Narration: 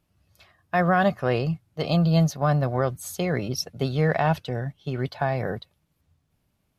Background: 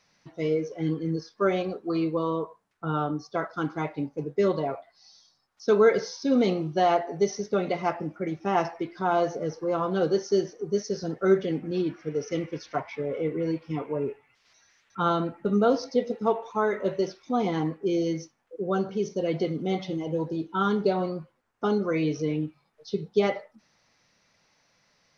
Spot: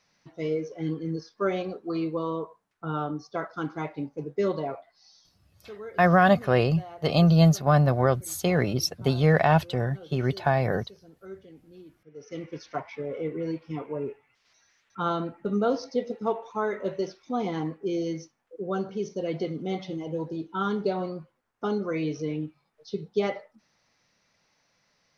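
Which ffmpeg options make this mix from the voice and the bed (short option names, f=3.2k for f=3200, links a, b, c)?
-filter_complex "[0:a]adelay=5250,volume=2dB[a];[1:a]volume=16dB,afade=t=out:st=5.33:d=0.26:silence=0.112202,afade=t=in:st=12.11:d=0.48:silence=0.11885[b];[a][b]amix=inputs=2:normalize=0"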